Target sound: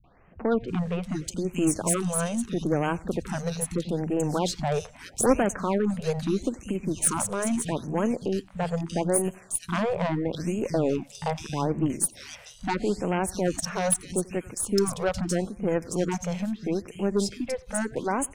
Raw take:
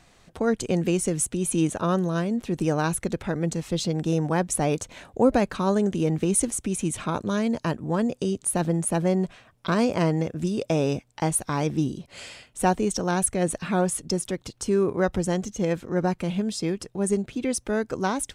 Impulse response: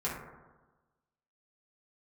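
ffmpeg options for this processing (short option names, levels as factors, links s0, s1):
-filter_complex "[0:a]acrossover=split=160|2600[s0][s1][s2];[s1]adelay=40[s3];[s2]adelay=680[s4];[s0][s3][s4]amix=inputs=3:normalize=0,aeval=exprs='0.422*(cos(1*acos(clip(val(0)/0.422,-1,1)))-cos(1*PI/2))+0.188*(cos(2*acos(clip(val(0)/0.422,-1,1)))-cos(2*PI/2))+0.0299*(cos(8*acos(clip(val(0)/0.422,-1,1)))-cos(8*PI/2))':c=same,asplit=2[s5][s6];[s6]adelay=90,lowpass=f=4800:p=1,volume=0.0708,asplit=2[s7][s8];[s8]adelay=90,lowpass=f=4800:p=1,volume=0.42,asplit=2[s9][s10];[s10]adelay=90,lowpass=f=4800:p=1,volume=0.42[s11];[s7][s9][s11]amix=inputs=3:normalize=0[s12];[s5][s12]amix=inputs=2:normalize=0,afftfilt=real='re*(1-between(b*sr/1024,270*pow(4600/270,0.5+0.5*sin(2*PI*0.78*pts/sr))/1.41,270*pow(4600/270,0.5+0.5*sin(2*PI*0.78*pts/sr))*1.41))':imag='im*(1-between(b*sr/1024,270*pow(4600/270,0.5+0.5*sin(2*PI*0.78*pts/sr))/1.41,270*pow(4600/270,0.5+0.5*sin(2*PI*0.78*pts/sr))*1.41))':win_size=1024:overlap=0.75"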